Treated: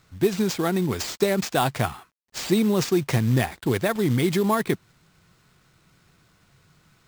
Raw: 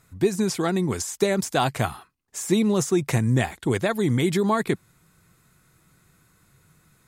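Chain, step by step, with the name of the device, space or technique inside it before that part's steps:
early companding sampler (sample-rate reduction 12,000 Hz, jitter 0%; log-companded quantiser 6 bits)

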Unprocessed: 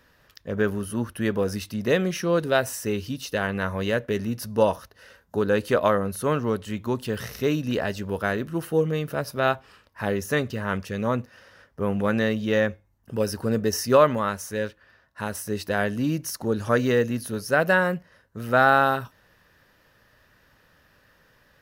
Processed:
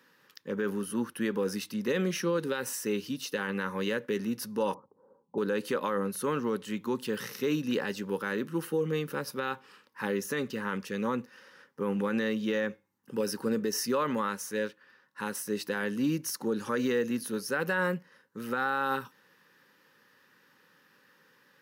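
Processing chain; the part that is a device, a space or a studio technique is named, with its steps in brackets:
PA system with an anti-feedback notch (high-pass filter 170 Hz 24 dB per octave; Butterworth band-reject 660 Hz, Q 3; brickwall limiter −17.5 dBFS, peak gain reduction 10 dB)
0:04.74–0:05.38: Butterworth low-pass 1,000 Hz 48 dB per octave
level −2.5 dB

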